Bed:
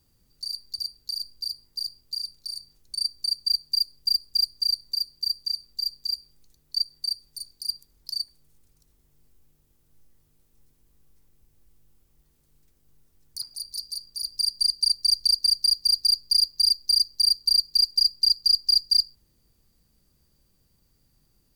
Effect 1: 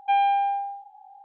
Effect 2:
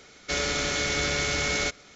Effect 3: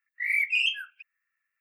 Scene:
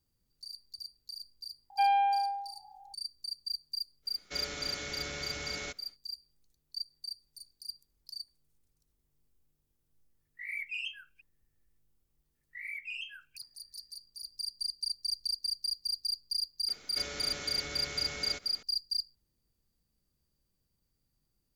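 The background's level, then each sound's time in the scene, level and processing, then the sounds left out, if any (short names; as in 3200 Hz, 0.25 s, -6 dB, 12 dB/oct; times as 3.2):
bed -13 dB
1.7 add 1 -5 dB
4.02 add 2 -13 dB, fades 0.10 s
10.19 add 3 -13 dB
12.35 add 3 -9.5 dB + compressor 1.5:1, threshold -38 dBFS
16.68 add 2 -3.5 dB + compressor 2.5:1, threshold -39 dBFS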